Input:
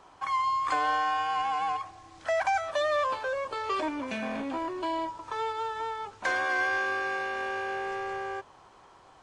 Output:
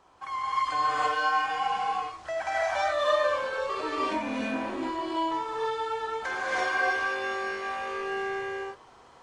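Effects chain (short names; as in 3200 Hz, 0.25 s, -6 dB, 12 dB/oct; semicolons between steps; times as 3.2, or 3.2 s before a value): non-linear reverb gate 0.36 s rising, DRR -7.5 dB; gain -6 dB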